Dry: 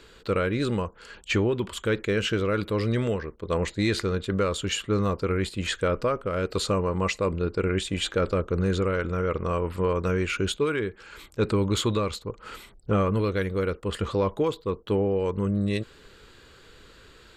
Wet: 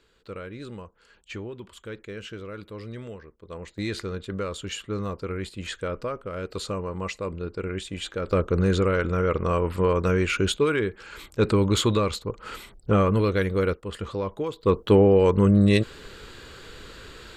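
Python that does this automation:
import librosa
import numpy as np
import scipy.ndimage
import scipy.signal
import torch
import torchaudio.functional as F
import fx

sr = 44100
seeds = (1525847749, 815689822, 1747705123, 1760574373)

y = fx.gain(x, sr, db=fx.steps((0.0, -12.5), (3.78, -5.5), (8.31, 3.0), (13.74, -4.5), (14.63, 8.0)))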